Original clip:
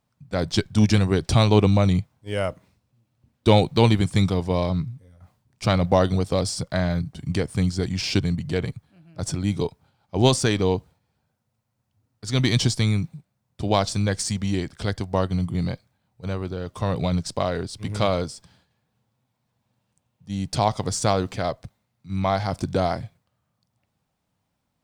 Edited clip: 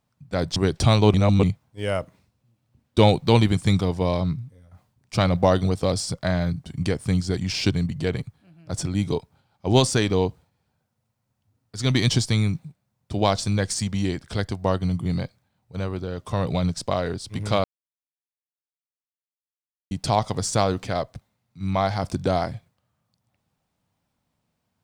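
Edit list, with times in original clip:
0.56–1.05 cut
1.63–1.92 reverse
18.13–20.4 mute

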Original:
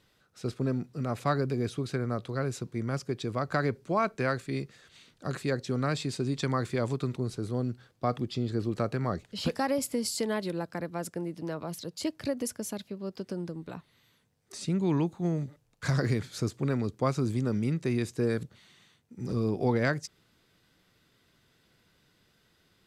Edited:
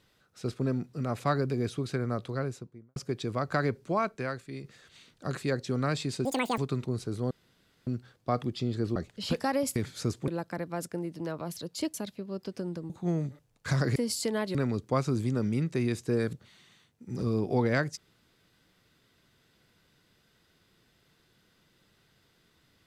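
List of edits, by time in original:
2.26–2.96 studio fade out
3.9–4.64 fade out quadratic, to -8 dB
6.25–6.89 speed 195%
7.62 insert room tone 0.56 s
8.71–9.11 cut
9.91–10.5 swap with 16.13–16.65
12.16–12.66 cut
13.62–15.07 cut

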